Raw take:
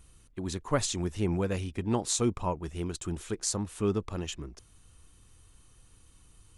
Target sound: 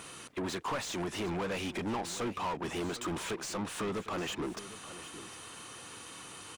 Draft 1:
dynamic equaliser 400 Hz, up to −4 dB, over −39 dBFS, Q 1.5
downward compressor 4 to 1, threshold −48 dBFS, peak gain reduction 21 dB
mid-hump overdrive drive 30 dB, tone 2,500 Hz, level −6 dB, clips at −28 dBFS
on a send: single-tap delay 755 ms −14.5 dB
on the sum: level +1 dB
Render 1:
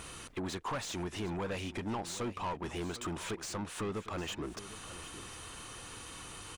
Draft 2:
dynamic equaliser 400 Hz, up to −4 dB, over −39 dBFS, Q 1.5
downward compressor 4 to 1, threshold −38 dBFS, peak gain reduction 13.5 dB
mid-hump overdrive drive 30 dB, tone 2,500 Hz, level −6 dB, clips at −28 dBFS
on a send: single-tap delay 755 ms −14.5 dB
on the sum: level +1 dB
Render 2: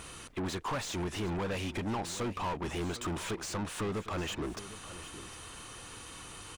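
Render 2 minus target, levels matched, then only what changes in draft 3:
125 Hz band +4.5 dB
add after dynamic equaliser: high-pass filter 140 Hz 12 dB per octave

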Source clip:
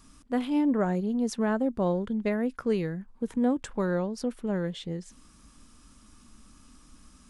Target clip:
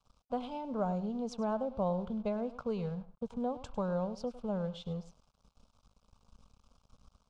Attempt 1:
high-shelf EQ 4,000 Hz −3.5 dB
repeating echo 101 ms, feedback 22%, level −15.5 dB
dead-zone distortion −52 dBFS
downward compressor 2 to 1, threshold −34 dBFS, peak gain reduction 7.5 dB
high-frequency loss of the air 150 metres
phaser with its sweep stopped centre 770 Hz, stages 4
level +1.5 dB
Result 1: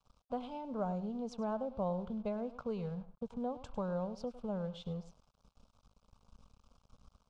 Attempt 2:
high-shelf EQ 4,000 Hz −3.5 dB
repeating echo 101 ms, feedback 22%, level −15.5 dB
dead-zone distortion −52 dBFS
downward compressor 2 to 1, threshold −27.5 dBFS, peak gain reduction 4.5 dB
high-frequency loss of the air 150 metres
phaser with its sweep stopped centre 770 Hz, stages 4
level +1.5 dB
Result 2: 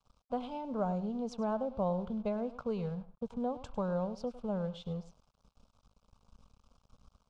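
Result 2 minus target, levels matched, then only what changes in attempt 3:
8,000 Hz band −2.5 dB
remove: high-shelf EQ 4,000 Hz −3.5 dB

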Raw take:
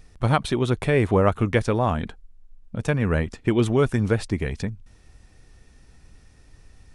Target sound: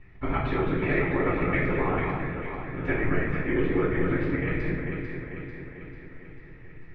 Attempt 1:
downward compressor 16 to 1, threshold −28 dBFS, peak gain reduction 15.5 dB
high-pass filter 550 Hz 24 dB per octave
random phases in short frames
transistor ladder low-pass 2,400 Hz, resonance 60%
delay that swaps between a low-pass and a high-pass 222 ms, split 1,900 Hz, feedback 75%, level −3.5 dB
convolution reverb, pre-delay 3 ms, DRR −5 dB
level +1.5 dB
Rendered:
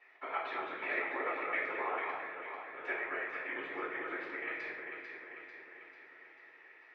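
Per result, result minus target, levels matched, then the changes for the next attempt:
downward compressor: peak gain reduction +5.5 dB; 500 Hz band −3.0 dB
change: downward compressor 16 to 1, threshold −22 dBFS, peak gain reduction 9.5 dB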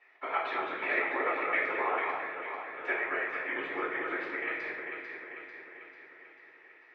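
500 Hz band −3.0 dB
remove: high-pass filter 550 Hz 24 dB per octave

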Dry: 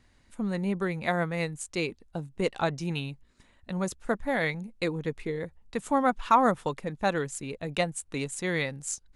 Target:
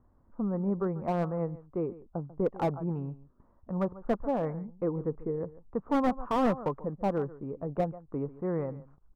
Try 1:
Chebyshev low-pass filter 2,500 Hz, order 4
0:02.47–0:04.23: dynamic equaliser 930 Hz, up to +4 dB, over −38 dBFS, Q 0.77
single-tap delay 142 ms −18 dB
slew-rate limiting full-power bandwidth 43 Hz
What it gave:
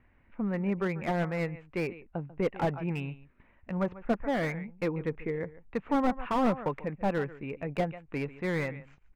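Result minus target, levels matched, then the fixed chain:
2,000 Hz band +10.0 dB
Chebyshev low-pass filter 1,200 Hz, order 4
0:02.47–0:04.23: dynamic equaliser 930 Hz, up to +4 dB, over −38 dBFS, Q 0.77
single-tap delay 142 ms −18 dB
slew-rate limiting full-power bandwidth 43 Hz

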